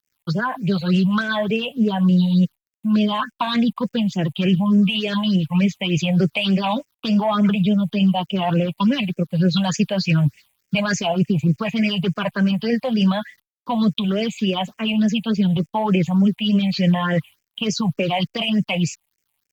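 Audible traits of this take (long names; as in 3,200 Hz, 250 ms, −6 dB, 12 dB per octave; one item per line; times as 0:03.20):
a quantiser's noise floor 10 bits, dither none
phaser sweep stages 6, 3.4 Hz, lowest notch 360–1,100 Hz
Opus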